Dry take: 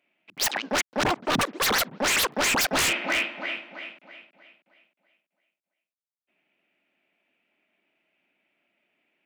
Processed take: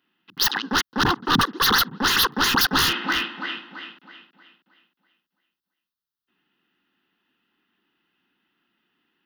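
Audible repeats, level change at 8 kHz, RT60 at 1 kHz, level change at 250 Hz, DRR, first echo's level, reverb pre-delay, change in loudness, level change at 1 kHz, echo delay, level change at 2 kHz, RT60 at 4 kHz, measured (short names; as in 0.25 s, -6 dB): none, -1.5 dB, none, +5.0 dB, none, none, none, +4.0 dB, +5.0 dB, none, +2.5 dB, none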